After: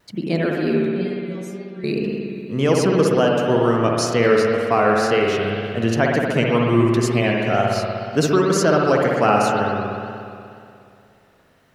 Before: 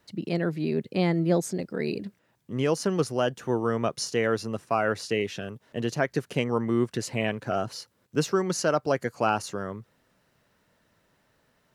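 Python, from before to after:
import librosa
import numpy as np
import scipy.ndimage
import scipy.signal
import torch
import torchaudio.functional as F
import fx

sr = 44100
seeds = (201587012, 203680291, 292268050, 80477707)

y = fx.stiff_resonator(x, sr, f0_hz=190.0, decay_s=0.5, stiffness=0.002, at=(0.88, 1.84))
y = fx.rev_spring(y, sr, rt60_s=2.5, pass_ms=(60,), chirp_ms=65, drr_db=-1.5)
y = fx.vibrato(y, sr, rate_hz=2.0, depth_cents=48.0)
y = y * librosa.db_to_amplitude(6.0)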